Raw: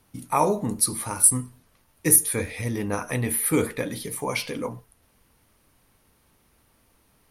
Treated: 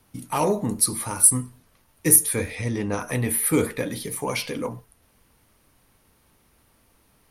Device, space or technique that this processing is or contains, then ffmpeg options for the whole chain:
one-band saturation: -filter_complex "[0:a]acrossover=split=570|3300[link_01][link_02][link_03];[link_02]asoftclip=type=tanh:threshold=-24dB[link_04];[link_01][link_04][link_03]amix=inputs=3:normalize=0,asettb=1/sr,asplit=3[link_05][link_06][link_07];[link_05]atrim=end=2.554[link_08];[link_06]atrim=start=2.55:end=3,asetpts=PTS-STARTPTS,afade=type=in:duration=0.004:curve=qsin,afade=type=out:start_time=0.446:duration=0.004:curve=qsin,lowpass=frequency=8700:width=0.5412,lowpass=frequency=8700:width=1.3066[link_09];[link_07]atrim=start=2.996[link_10];[link_08][link_09]acrossfade=duration=0.004:curve1=hsin:curve2=qsin[link_11];[link_11][link_10]acrossfade=duration=0.004:curve1=qsin:curve2=hsin,volume=1.5dB"

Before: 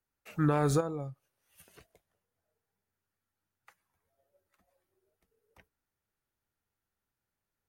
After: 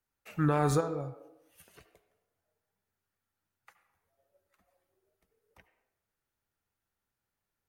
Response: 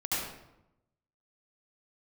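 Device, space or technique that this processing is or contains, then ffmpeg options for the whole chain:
filtered reverb send: -filter_complex "[0:a]asplit=2[link_01][link_02];[link_02]highpass=frequency=310:width=0.5412,highpass=frequency=310:width=1.3066,lowpass=3700[link_03];[1:a]atrim=start_sample=2205[link_04];[link_03][link_04]afir=irnorm=-1:irlink=0,volume=-16dB[link_05];[link_01][link_05]amix=inputs=2:normalize=0"

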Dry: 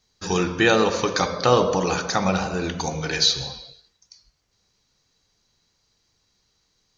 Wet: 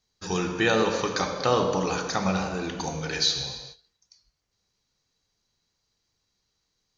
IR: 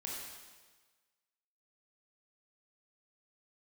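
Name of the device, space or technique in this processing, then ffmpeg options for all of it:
keyed gated reverb: -filter_complex "[0:a]asplit=3[link_01][link_02][link_03];[1:a]atrim=start_sample=2205[link_04];[link_02][link_04]afir=irnorm=-1:irlink=0[link_05];[link_03]apad=whole_len=307560[link_06];[link_05][link_06]sidechaingate=range=-33dB:threshold=-44dB:ratio=16:detection=peak,volume=-2.5dB[link_07];[link_01][link_07]amix=inputs=2:normalize=0,volume=-8dB"

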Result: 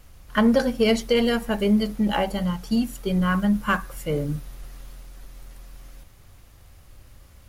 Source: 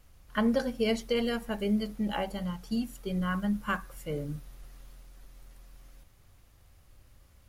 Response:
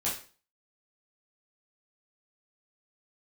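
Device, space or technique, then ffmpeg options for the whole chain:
parallel distortion: -filter_complex "[0:a]asplit=2[link_01][link_02];[link_02]asoftclip=type=hard:threshold=-29dB,volume=-10.5dB[link_03];[link_01][link_03]amix=inputs=2:normalize=0,volume=7dB"

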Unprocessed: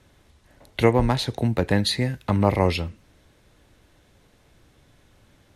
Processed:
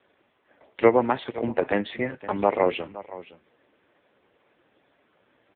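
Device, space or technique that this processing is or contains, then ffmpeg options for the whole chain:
satellite phone: -filter_complex "[0:a]asplit=3[link_01][link_02][link_03];[link_01]afade=type=out:start_time=2.21:duration=0.02[link_04];[link_02]lowshelf=frequency=500:gain=-2.5,afade=type=in:start_time=2.21:duration=0.02,afade=type=out:start_time=2.65:duration=0.02[link_05];[link_03]afade=type=in:start_time=2.65:duration=0.02[link_06];[link_04][link_05][link_06]amix=inputs=3:normalize=0,highpass=320,lowpass=3000,aecho=1:1:517:0.141,volume=3dB" -ar 8000 -c:a libopencore_amrnb -b:a 5150

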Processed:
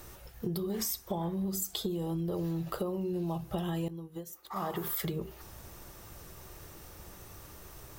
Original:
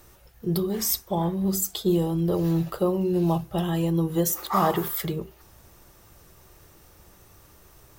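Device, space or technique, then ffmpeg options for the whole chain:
serial compression, peaks first: -filter_complex "[0:a]acompressor=threshold=-30dB:ratio=10,acompressor=threshold=-37dB:ratio=2,asettb=1/sr,asplit=3[link_01][link_02][link_03];[link_01]atrim=end=3.884[link_04];[link_02]atrim=start=3.88:end=4.56,asetpts=PTS-STARTPTS,afade=type=in:duration=0.004:curve=qsin,afade=type=out:start_time=0.676:duration=0.004:curve=qsin,agate=range=-33dB:threshold=-29dB:ratio=3:detection=peak[link_05];[link_03]atrim=start=4.556[link_06];[link_04][link_05]acrossfade=duration=0.004:curve1=hsin:curve2=qsin[link_07];[link_07][link_06]acrossfade=duration=0.004:curve1=qsin:curve2=hsin,volume=3.5dB"

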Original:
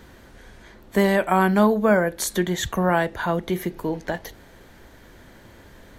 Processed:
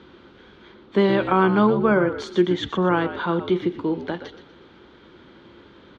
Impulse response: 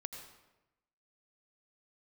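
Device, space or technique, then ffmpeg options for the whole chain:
frequency-shifting delay pedal into a guitar cabinet: -filter_complex "[0:a]asplit=4[link_01][link_02][link_03][link_04];[link_02]adelay=122,afreqshift=-68,volume=-11dB[link_05];[link_03]adelay=244,afreqshift=-136,volume=-21.2dB[link_06];[link_04]adelay=366,afreqshift=-204,volume=-31.3dB[link_07];[link_01][link_05][link_06][link_07]amix=inputs=4:normalize=0,highpass=100,equalizer=frequency=110:width_type=q:width=4:gain=-7,equalizer=frequency=350:width_type=q:width=4:gain=7,equalizer=frequency=670:width_type=q:width=4:gain=-8,equalizer=frequency=1300:width_type=q:width=4:gain=5,equalizer=frequency=1800:width_type=q:width=4:gain=-8,equalizer=frequency=3400:width_type=q:width=4:gain=5,lowpass=frequency=4100:width=0.5412,lowpass=frequency=4100:width=1.3066,asettb=1/sr,asplit=3[link_08][link_09][link_10];[link_08]atrim=end=1.314[link_11];[link_09]atrim=start=1.31:end=3.14,asetpts=PTS-STARTPTS,afade=type=in:duration=0.004:curve=qsin,afade=type=out:start_time=1.826:duration=0.004:curve=qsin,equalizer=frequency=3800:width_type=o:width=0.26:gain=-6[link_12];[link_10]atrim=start=3.136[link_13];[link_11][link_12]acrossfade=duration=0.004:curve1=hsin:curve2=qsin[link_14];[link_14][link_13]acrossfade=duration=0.004:curve1=qsin:curve2=hsin"

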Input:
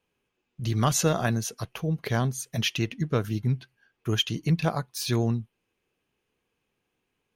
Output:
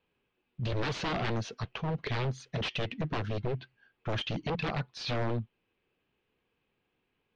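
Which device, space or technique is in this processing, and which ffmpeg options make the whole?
synthesiser wavefolder: -af "aeval=exprs='0.0501*(abs(mod(val(0)/0.0501+3,4)-2)-1)':channel_layout=same,lowpass=frequency=4200:width=0.5412,lowpass=frequency=4200:width=1.3066"

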